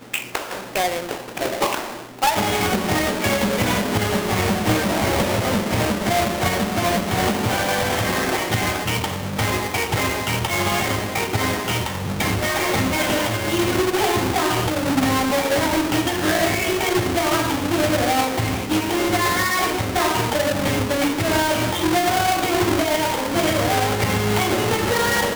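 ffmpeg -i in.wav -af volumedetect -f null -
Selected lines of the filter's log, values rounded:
mean_volume: -20.7 dB
max_volume: -12.7 dB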